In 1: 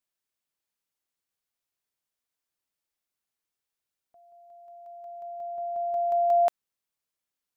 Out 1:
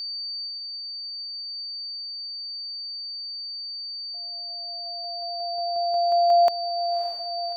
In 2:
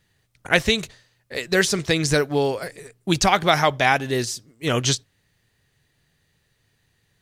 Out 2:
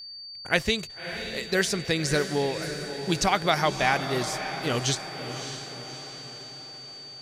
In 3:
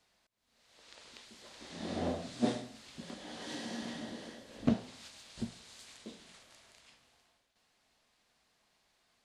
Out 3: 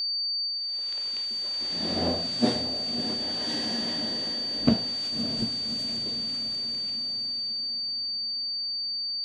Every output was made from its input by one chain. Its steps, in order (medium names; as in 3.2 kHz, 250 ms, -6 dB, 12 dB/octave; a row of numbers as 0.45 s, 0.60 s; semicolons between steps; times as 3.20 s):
whistle 4.6 kHz -33 dBFS; echo that smears into a reverb 599 ms, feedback 54%, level -9 dB; normalise loudness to -27 LUFS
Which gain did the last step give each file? +3.5 dB, -5.5 dB, +7.0 dB